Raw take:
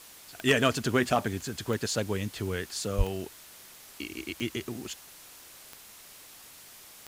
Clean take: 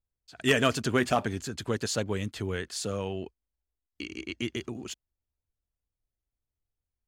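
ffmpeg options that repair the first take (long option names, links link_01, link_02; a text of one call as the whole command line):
ffmpeg -i in.wav -filter_complex "[0:a]adeclick=threshold=4,asplit=3[link_01][link_02][link_03];[link_01]afade=type=out:start_time=2.97:duration=0.02[link_04];[link_02]highpass=frequency=140:width=0.5412,highpass=frequency=140:width=1.3066,afade=type=in:start_time=2.97:duration=0.02,afade=type=out:start_time=3.09:duration=0.02[link_05];[link_03]afade=type=in:start_time=3.09:duration=0.02[link_06];[link_04][link_05][link_06]amix=inputs=3:normalize=0,afwtdn=0.0035" out.wav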